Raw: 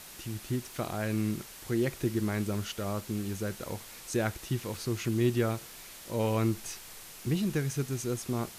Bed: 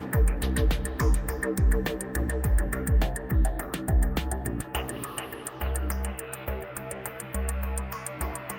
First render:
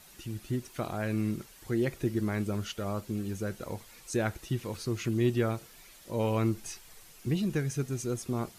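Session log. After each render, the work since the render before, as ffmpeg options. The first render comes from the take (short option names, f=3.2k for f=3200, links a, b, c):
-af "afftdn=nr=9:nf=-48"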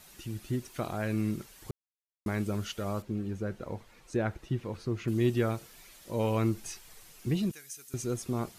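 -filter_complex "[0:a]asettb=1/sr,asplit=3[a][b][c];[a]atrim=end=3.024[d];[b]atrim=start=3.02:end=5.08,asetpts=PTS-STARTPTS,afade=t=in:d=0.004:c=qsin,afade=t=out:st=2.056:d=0.004:c=qsin,lowpass=f=1.7k:p=1[e];[c]atrim=start=5.076[f];[d][e]acrossfade=d=0.004:c1=hsin:c2=qsin[g];[g][f]acrossfade=d=0.004:c1=qsin:c2=hsin,asettb=1/sr,asplit=3[h][i][j];[h]atrim=end=7.514[k];[i]atrim=start=7.51:end=7.94,asetpts=PTS-STARTPTS,afade=t=in:d=0.004:c=qsin,afade=t=out:st=0.426:d=0.004:c=qsin,aderivative[l];[j]atrim=start=7.936[m];[k][l]acrossfade=d=0.004:c1=hsin:c2=qsin[n];[n][m]acrossfade=d=0.004:c1=qsin:c2=hsin,asplit=3[o][p][q];[o]atrim=end=1.71,asetpts=PTS-STARTPTS,afade=t=out:st=1.706:d=0.004:c=hsin[r];[p]atrim=start=1.71:end=2.26,asetpts=PTS-STARTPTS,volume=0[s];[q]atrim=start=2.26,asetpts=PTS-STARTPTS,afade=t=in:d=0.004:c=hsin[t];[r][s][t]concat=n=3:v=0:a=1"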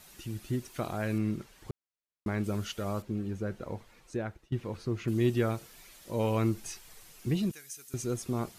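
-filter_complex "[0:a]asettb=1/sr,asplit=3[a][b][c];[a]atrim=end=1.184[d];[b]atrim=start=1.18:end=2.44,asetpts=PTS-STARTPTS,afade=t=in:d=0.004:c=qsin,afade=t=out:st=1.256:d=0.004:c=qsin,lowpass=f=3.6k:p=1[e];[c]atrim=start=2.436[f];[d][e]acrossfade=d=0.004:c1=hsin:c2=qsin[g];[g][f]acrossfade=d=0.004:c1=qsin:c2=hsin,asplit=2[h][i];[h]atrim=end=4.52,asetpts=PTS-STARTPTS,afade=t=out:st=3.64:d=0.88:c=qsin:silence=0.11885[j];[i]atrim=start=4.52,asetpts=PTS-STARTPTS,afade=t=in:d=0.004:c=hsin:silence=0.11885[k];[j][k]concat=n=2:v=0:a=1"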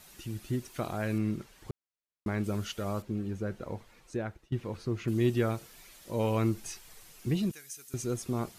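-af anull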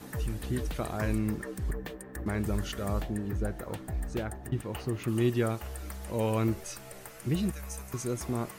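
-filter_complex "[1:a]volume=-11dB[a];[0:a][a]amix=inputs=2:normalize=0"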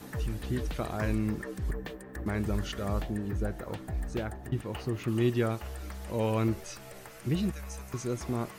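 -filter_complex "[0:a]highshelf=f=8.3k:g=7,acrossover=split=6100[a][b];[b]acompressor=threshold=-55dB:ratio=4:attack=1:release=60[c];[a][c]amix=inputs=2:normalize=0"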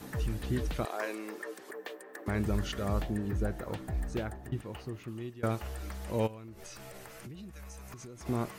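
-filter_complex "[0:a]asettb=1/sr,asplit=3[a][b][c];[a]atrim=end=0.854[d];[b]atrim=start=0.85:end=2.28,asetpts=PTS-STARTPTS,afade=t=in:d=0.004:c=qsin,afade=t=out:st=1.426:d=0.004:c=qsin,highpass=f=370:w=0.5412,highpass=f=370:w=1.3066[e];[c]atrim=start=2.276[f];[d][e]acrossfade=d=0.004:c1=hsin:c2=qsin[g];[g][f]acrossfade=d=0.004:c1=qsin:c2=hsin,asplit=3[h][i][j];[h]afade=t=out:st=6.26:d=0.02[k];[i]acompressor=threshold=-42dB:ratio=16:attack=3.2:release=140:knee=1:detection=peak,afade=t=in:st=6.26:d=0.02,afade=t=out:st=8.25:d=0.02[l];[j]afade=t=in:st=8.25:d=0.02[m];[k][l][m]amix=inputs=3:normalize=0,asplit=2[n][o];[n]atrim=end=5.43,asetpts=PTS-STARTPTS,afade=t=out:st=3.99:d=1.44:silence=0.0749894[p];[o]atrim=start=5.43,asetpts=PTS-STARTPTS,afade=t=in:d=0.004:c=hsin:silence=0.0749894[q];[p][q]concat=n=2:v=0:a=1"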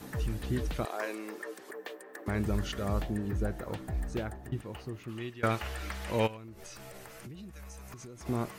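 -filter_complex "[0:a]asettb=1/sr,asplit=3[a][b][c];[a]atrim=end=5.094[d];[b]atrim=start=5.09:end=6.37,asetpts=PTS-STARTPTS,afade=t=in:d=0.004:c=qsin,afade=t=out:st=1.276:d=0.004:c=qsin,equalizer=f=2.3k:w=0.5:g=10[e];[c]atrim=start=6.366[f];[d][e]acrossfade=d=0.004:c1=hsin:c2=qsin[g];[g][f]acrossfade=d=0.004:c1=qsin:c2=hsin"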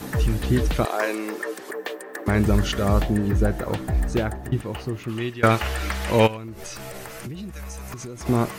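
-af "volume=11.5dB"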